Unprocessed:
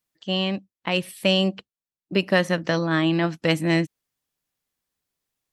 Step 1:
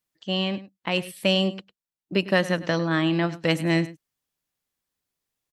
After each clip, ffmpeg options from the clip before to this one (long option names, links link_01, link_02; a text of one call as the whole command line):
ffmpeg -i in.wav -af "aecho=1:1:102:0.141,volume=-1.5dB" out.wav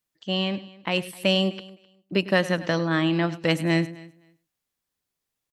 ffmpeg -i in.wav -af "aecho=1:1:258|516:0.0794|0.0127" out.wav